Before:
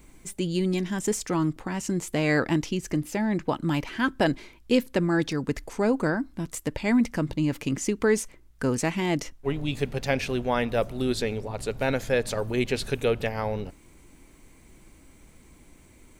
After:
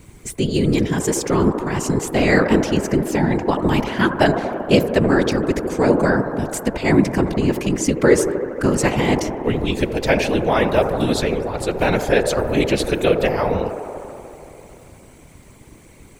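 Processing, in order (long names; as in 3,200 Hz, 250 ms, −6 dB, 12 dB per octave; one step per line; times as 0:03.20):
delay with a band-pass on its return 77 ms, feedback 84%, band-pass 620 Hz, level −7.5 dB
random phases in short frames
level +7.5 dB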